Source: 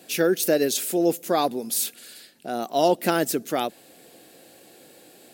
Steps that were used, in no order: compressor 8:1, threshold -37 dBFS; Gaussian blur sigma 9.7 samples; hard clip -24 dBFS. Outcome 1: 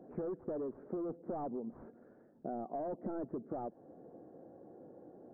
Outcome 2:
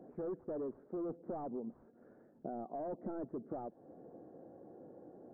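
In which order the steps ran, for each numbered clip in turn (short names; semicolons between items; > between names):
hard clip > Gaussian blur > compressor; hard clip > compressor > Gaussian blur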